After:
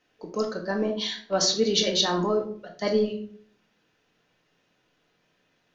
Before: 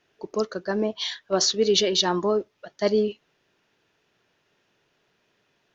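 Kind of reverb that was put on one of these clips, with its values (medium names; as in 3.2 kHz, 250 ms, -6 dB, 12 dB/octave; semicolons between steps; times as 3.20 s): simulated room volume 610 m³, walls furnished, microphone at 2 m; trim -3 dB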